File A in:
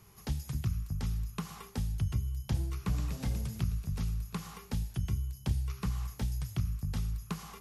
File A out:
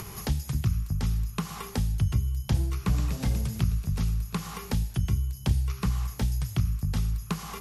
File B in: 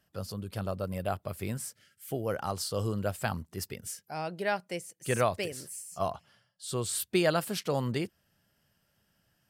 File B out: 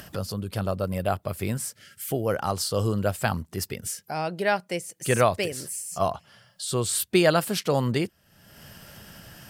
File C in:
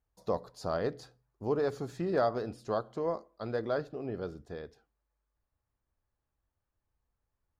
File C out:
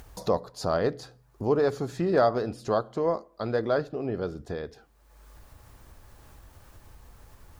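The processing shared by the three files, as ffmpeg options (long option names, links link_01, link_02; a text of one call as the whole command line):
ffmpeg -i in.wav -af "acompressor=mode=upward:threshold=-35dB:ratio=2.5,volume=6.5dB" out.wav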